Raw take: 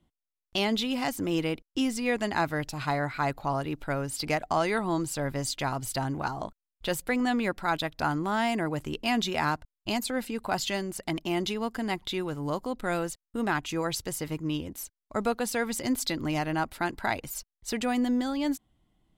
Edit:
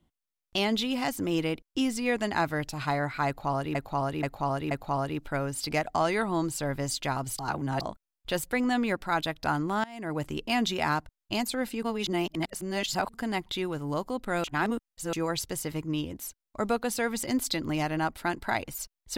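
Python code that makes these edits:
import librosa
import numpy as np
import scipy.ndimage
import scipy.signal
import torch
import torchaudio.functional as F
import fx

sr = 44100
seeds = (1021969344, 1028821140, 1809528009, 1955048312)

y = fx.edit(x, sr, fx.repeat(start_s=3.27, length_s=0.48, count=4),
    fx.reverse_span(start_s=5.95, length_s=0.42),
    fx.fade_in_from(start_s=8.4, length_s=0.31, curve='qua', floor_db=-21.5),
    fx.reverse_span(start_s=10.39, length_s=1.31),
    fx.reverse_span(start_s=13.0, length_s=0.69), tone=tone)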